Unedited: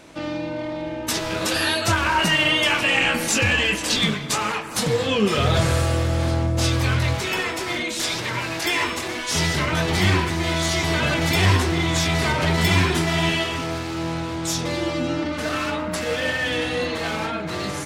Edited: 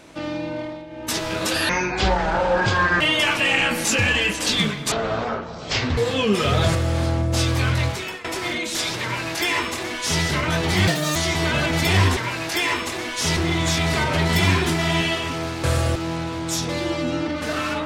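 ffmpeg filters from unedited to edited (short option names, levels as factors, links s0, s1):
-filter_complex "[0:a]asplit=14[s0][s1][s2][s3][s4][s5][s6][s7][s8][s9][s10][s11][s12][s13];[s0]atrim=end=0.87,asetpts=PTS-STARTPTS,afade=t=out:st=0.59:d=0.28:silence=0.281838[s14];[s1]atrim=start=0.87:end=1.694,asetpts=PTS-STARTPTS,afade=t=in:d=0.28:silence=0.281838[s15];[s2]atrim=start=1.69:end=2.44,asetpts=PTS-STARTPTS,asetrate=25137,aresample=44100,atrim=end_sample=58026,asetpts=PTS-STARTPTS[s16];[s3]atrim=start=2.436:end=4.354[s17];[s4]atrim=start=4.35:end=4.9,asetpts=PTS-STARTPTS,asetrate=22932,aresample=44100,atrim=end_sample=46644,asetpts=PTS-STARTPTS[s18];[s5]atrim=start=4.896:end=5.682[s19];[s6]atrim=start=5.998:end=7.49,asetpts=PTS-STARTPTS,afade=t=out:st=1.102:d=0.39:silence=0.125893[s20];[s7]atrim=start=7.49:end=10.124,asetpts=PTS-STARTPTS,afade=t=in:d=0.004:c=hsin:silence=0.125893[s21];[s8]atrim=start=10.12:end=10.64,asetpts=PTS-STARTPTS,asetrate=81144,aresample=44100,atrim=end_sample=12463,asetpts=PTS-STARTPTS[s22];[s9]atrim=start=10.636:end=11.652[s23];[s10]atrim=start=8.268:end=9.472[s24];[s11]atrim=start=11.648:end=13.922[s25];[s12]atrim=start=5.678:end=6.002[s26];[s13]atrim=start=13.918[s27];[s14][s15]concat=n=2:v=0:a=1[s28];[s28][s16]acrossfade=d=0.004:c1=hsin:c2=hsin[s29];[s29][s17]acrossfade=d=0.004:c1=hsin:c2=hsin[s30];[s30][s18]acrossfade=d=0.004:c1=hsin:c2=hsin[s31];[s31][s19]acrossfade=d=0.004:c1=hsin:c2=hsin[s32];[s20][s21]concat=n=2:v=0:a=1[s33];[s32][s33]acrossfade=d=0.004:c1=hsin:c2=hsin[s34];[s34][s22]acrossfade=d=0.004:c1=hsin:c2=hsin[s35];[s35][s23]acrossfade=d=0.004:c1=hsin:c2=hsin[s36];[s36][s24]acrossfade=d=0.004:c1=hsin:c2=hsin[s37];[s37][s25]acrossfade=d=0.004:c1=hsin:c2=hsin[s38];[s38][s26]acrossfade=d=0.004:c1=hsin:c2=hsin[s39];[s39][s27]acrossfade=d=0.004:c1=hsin:c2=hsin"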